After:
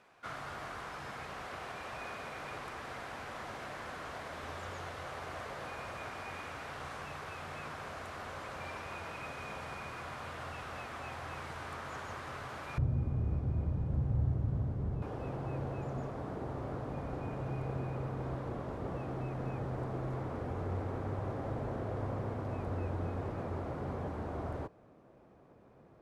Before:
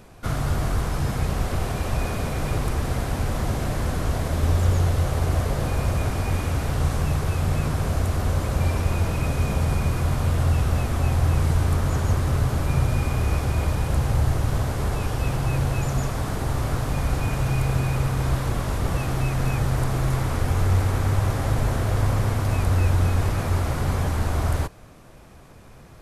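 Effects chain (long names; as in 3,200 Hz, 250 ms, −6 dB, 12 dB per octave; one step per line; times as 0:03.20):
resonant band-pass 1,600 Hz, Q 0.75, from 0:12.78 150 Hz, from 0:15.02 420 Hz
level −7.5 dB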